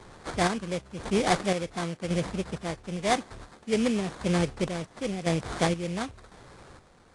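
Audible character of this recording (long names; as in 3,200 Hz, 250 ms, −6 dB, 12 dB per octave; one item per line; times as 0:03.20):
chopped level 0.95 Hz, depth 60%, duty 45%
aliases and images of a low sample rate 2,800 Hz, jitter 20%
AAC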